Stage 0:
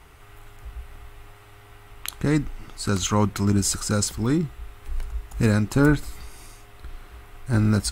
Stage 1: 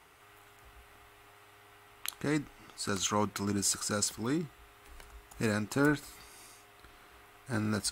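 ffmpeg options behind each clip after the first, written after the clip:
ffmpeg -i in.wav -af "highpass=frequency=360:poles=1,volume=-5.5dB" out.wav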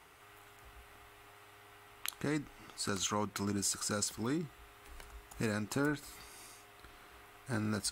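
ffmpeg -i in.wav -af "acompressor=threshold=-34dB:ratio=2" out.wav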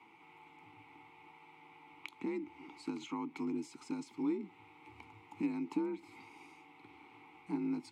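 ffmpeg -i in.wav -filter_complex "[0:a]acompressor=threshold=-40dB:ratio=2.5,afreqshift=52,asplit=3[link_01][link_02][link_03];[link_01]bandpass=frequency=300:width_type=q:width=8,volume=0dB[link_04];[link_02]bandpass=frequency=870:width_type=q:width=8,volume=-6dB[link_05];[link_03]bandpass=frequency=2240:width_type=q:width=8,volume=-9dB[link_06];[link_04][link_05][link_06]amix=inputs=3:normalize=0,volume=14dB" out.wav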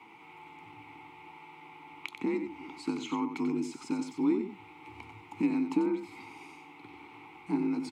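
ffmpeg -i in.wav -af "aecho=1:1:92:0.376,volume=7dB" out.wav

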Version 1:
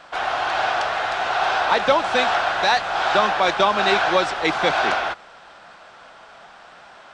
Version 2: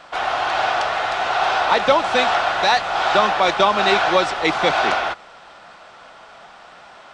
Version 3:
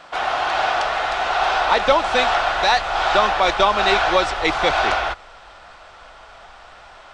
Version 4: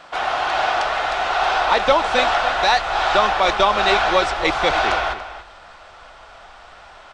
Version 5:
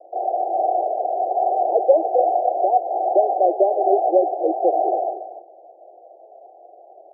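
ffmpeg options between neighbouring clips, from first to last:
ffmpeg -i in.wav -af "bandreject=frequency=1600:width=16,volume=2dB" out.wav
ffmpeg -i in.wav -af "asubboost=boost=11.5:cutoff=55" out.wav
ffmpeg -i in.wav -filter_complex "[0:a]asplit=2[link_01][link_02];[link_02]adelay=285.7,volume=-12dB,highshelf=frequency=4000:gain=-6.43[link_03];[link_01][link_03]amix=inputs=2:normalize=0" out.wav
ffmpeg -i in.wav -af "asuperpass=centerf=500:order=20:qfactor=1.1,volume=3.5dB" out.wav

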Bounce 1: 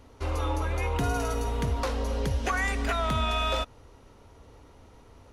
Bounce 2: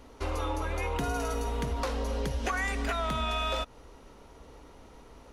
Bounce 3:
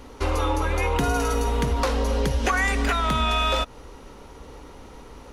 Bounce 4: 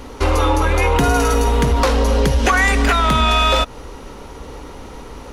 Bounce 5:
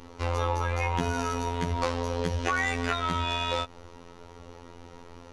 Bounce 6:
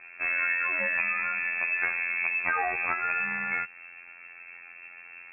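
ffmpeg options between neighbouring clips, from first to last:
ffmpeg -i in.wav -af "equalizer=frequency=97:width_type=o:width=0.43:gain=-15,acompressor=threshold=-32dB:ratio=2.5,volume=2.5dB" out.wav
ffmpeg -i in.wav -af "bandreject=frequency=660:width=12,volume=8.5dB" out.wav
ffmpeg -i in.wav -af "asoftclip=type=tanh:threshold=-15dB,volume=9dB" out.wav
ffmpeg -i in.wav -af "lowpass=7300,afftfilt=real='hypot(re,im)*cos(PI*b)':imag='0':win_size=2048:overlap=0.75,volume=-9dB" out.wav
ffmpeg -i in.wav -af "lowpass=frequency=2300:width_type=q:width=0.5098,lowpass=frequency=2300:width_type=q:width=0.6013,lowpass=frequency=2300:width_type=q:width=0.9,lowpass=frequency=2300:width_type=q:width=2.563,afreqshift=-2700" out.wav

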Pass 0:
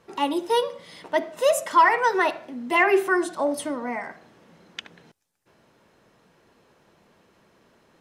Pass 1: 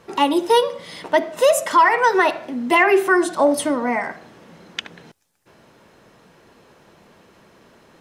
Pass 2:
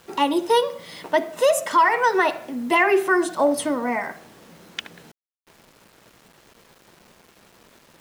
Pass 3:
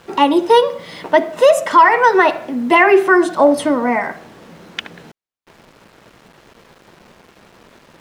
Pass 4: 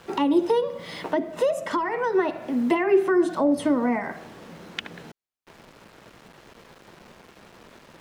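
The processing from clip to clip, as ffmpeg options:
ffmpeg -i in.wav -af "alimiter=limit=-14.5dB:level=0:latency=1:release=271,volume=8.5dB" out.wav
ffmpeg -i in.wav -af "acrusher=bits=7:mix=0:aa=0.000001,volume=-3dB" out.wav
ffmpeg -i in.wav -af "lowpass=frequency=3100:poles=1,volume=8dB" out.wav
ffmpeg -i in.wav -filter_complex "[0:a]acrossover=split=380[link_01][link_02];[link_02]acompressor=threshold=-23dB:ratio=10[link_03];[link_01][link_03]amix=inputs=2:normalize=0,volume=-3dB" out.wav

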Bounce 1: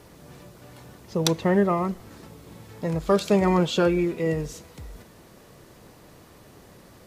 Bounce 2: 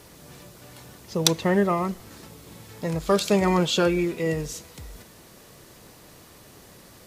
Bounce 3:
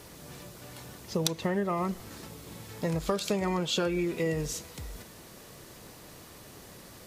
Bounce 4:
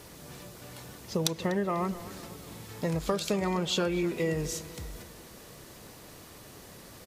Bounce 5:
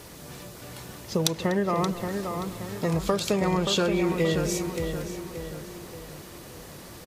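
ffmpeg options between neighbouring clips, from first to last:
ffmpeg -i in.wav -af "highshelf=frequency=2300:gain=8,volume=-1dB" out.wav
ffmpeg -i in.wav -af "acompressor=threshold=-25dB:ratio=10" out.wav
ffmpeg -i in.wav -filter_complex "[0:a]asplit=2[link_01][link_02];[link_02]adelay=246,lowpass=frequency=3500:poles=1,volume=-15.5dB,asplit=2[link_03][link_04];[link_04]adelay=246,lowpass=frequency=3500:poles=1,volume=0.52,asplit=2[link_05][link_06];[link_06]adelay=246,lowpass=frequency=3500:poles=1,volume=0.52,asplit=2[link_07][link_08];[link_08]adelay=246,lowpass=frequency=3500:poles=1,volume=0.52,asplit=2[link_09][link_10];[link_10]adelay=246,lowpass=frequency=3500:poles=1,volume=0.52[link_11];[link_01][link_03][link_05][link_07][link_09][link_11]amix=inputs=6:normalize=0" out.wav
ffmpeg -i in.wav -filter_complex "[0:a]asplit=2[link_01][link_02];[link_02]adelay=577,lowpass=frequency=2900:poles=1,volume=-6dB,asplit=2[link_03][link_04];[link_04]adelay=577,lowpass=frequency=2900:poles=1,volume=0.47,asplit=2[link_05][link_06];[link_06]adelay=577,lowpass=frequency=2900:poles=1,volume=0.47,asplit=2[link_07][link_08];[link_08]adelay=577,lowpass=frequency=2900:poles=1,volume=0.47,asplit=2[link_09][link_10];[link_10]adelay=577,lowpass=frequency=2900:poles=1,volume=0.47,asplit=2[link_11][link_12];[link_12]adelay=577,lowpass=frequency=2900:poles=1,volume=0.47[link_13];[link_01][link_03][link_05][link_07][link_09][link_11][link_13]amix=inputs=7:normalize=0,volume=4dB" out.wav

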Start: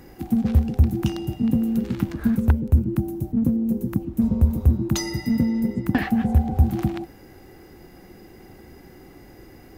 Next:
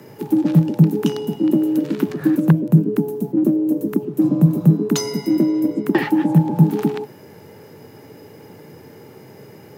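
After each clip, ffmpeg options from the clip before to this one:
ffmpeg -i in.wav -af "afreqshift=86,bandreject=frequency=2100:width=27,volume=4dB" out.wav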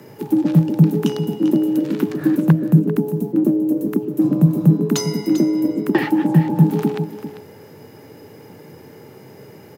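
ffmpeg -i in.wav -af "aecho=1:1:395:0.251" out.wav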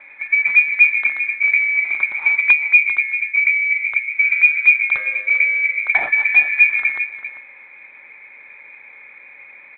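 ffmpeg -i in.wav -af "lowpass=frequency=2200:width_type=q:width=0.5098,lowpass=frequency=2200:width_type=q:width=0.6013,lowpass=frequency=2200:width_type=q:width=0.9,lowpass=frequency=2200:width_type=q:width=2.563,afreqshift=-2600" -ar 8000 -c:a adpcm_g726 -b:a 32k out.wav

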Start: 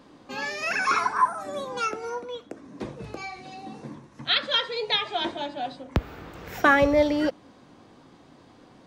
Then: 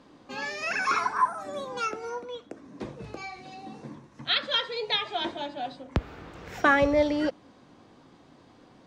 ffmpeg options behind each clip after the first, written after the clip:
ffmpeg -i in.wav -af "lowpass=9500,volume=-2.5dB" out.wav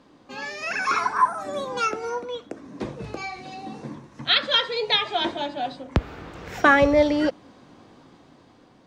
ffmpeg -i in.wav -af "dynaudnorm=framelen=300:gausssize=7:maxgain=6dB" out.wav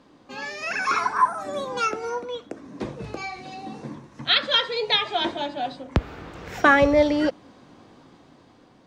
ffmpeg -i in.wav -af anull out.wav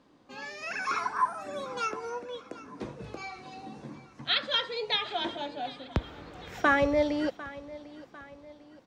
ffmpeg -i in.wav -af "aecho=1:1:749|1498|2247|2996:0.126|0.0592|0.0278|0.0131,volume=-7.5dB" out.wav

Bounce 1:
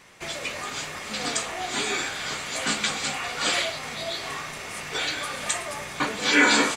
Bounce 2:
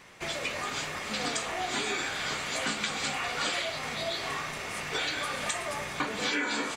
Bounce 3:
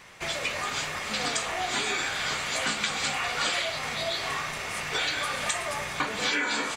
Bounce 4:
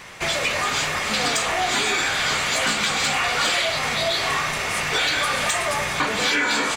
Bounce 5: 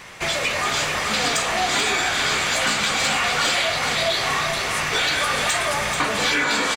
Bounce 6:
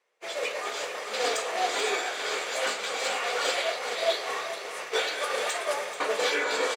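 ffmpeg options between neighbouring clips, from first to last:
ffmpeg -i in.wav -af "equalizer=frequency=10000:width=0.5:gain=-4,acompressor=threshold=-27dB:ratio=10" out.wav
ffmpeg -i in.wav -af "equalizer=frequency=290:width_type=o:width=1.6:gain=-5,volume=3.5dB" out.wav
ffmpeg -i in.wav -filter_complex "[0:a]asplit=2[link_01][link_02];[link_02]alimiter=limit=-21.5dB:level=0:latency=1:release=25,volume=-2.5dB[link_03];[link_01][link_03]amix=inputs=2:normalize=0,asoftclip=type=tanh:threshold=-18dB,volume=4.5dB" out.wav
ffmpeg -i in.wav -af "aecho=1:1:435:0.473" out.wav
ffmpeg -i in.wav -af "highpass=frequency=460:width_type=q:width=3.8,agate=range=-33dB:threshold=-13dB:ratio=3:detection=peak,volume=-4dB" out.wav

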